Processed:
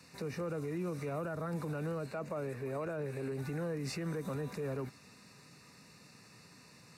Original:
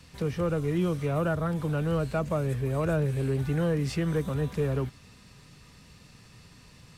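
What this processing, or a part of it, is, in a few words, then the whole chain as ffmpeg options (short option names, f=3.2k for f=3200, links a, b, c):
PA system with an anti-feedback notch: -filter_complex "[0:a]asettb=1/sr,asplit=3[a][b][c];[a]atrim=end=2.064[d];[b]atrim=start=2.06:end=3.32,asetpts=PTS-STARTPTS,afade=t=in:d=0.004:c=qsin,afade=t=out:st=1.256:d=0.004:c=qsin,bass=f=250:g=-5,treble=f=4k:g=-6[e];[c]atrim=start=3.316[f];[d][e]acrossfade=d=0.004:c1=hsin:c2=qsin[g];[g][f]acrossfade=d=0.004:c1=qsin:c2=hsin,highpass=180,asuperstop=centerf=3200:order=4:qfactor=3.6,alimiter=level_in=4.5dB:limit=-24dB:level=0:latency=1:release=47,volume=-4.5dB,volume=-2dB"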